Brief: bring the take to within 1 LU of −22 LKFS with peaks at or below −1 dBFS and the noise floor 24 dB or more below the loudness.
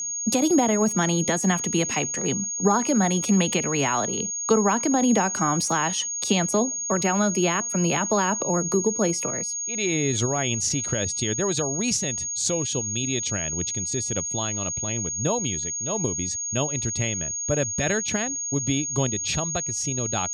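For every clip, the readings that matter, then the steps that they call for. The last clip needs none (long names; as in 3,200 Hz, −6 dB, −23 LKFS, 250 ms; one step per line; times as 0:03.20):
interfering tone 6,600 Hz; level of the tone −27 dBFS; integrated loudness −23.5 LKFS; sample peak −7.5 dBFS; target loudness −22.0 LKFS
→ notch filter 6,600 Hz, Q 30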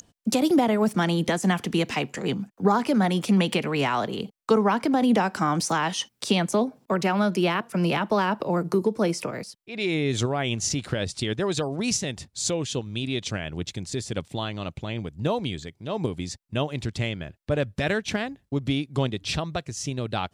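interfering tone none found; integrated loudness −26.0 LKFS; sample peak −8.0 dBFS; target loudness −22.0 LKFS
→ level +4 dB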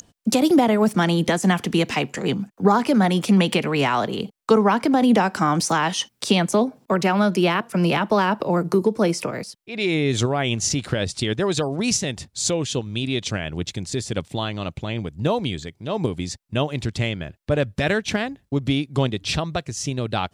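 integrated loudness −22.0 LKFS; sample peak −4.0 dBFS; background noise floor −65 dBFS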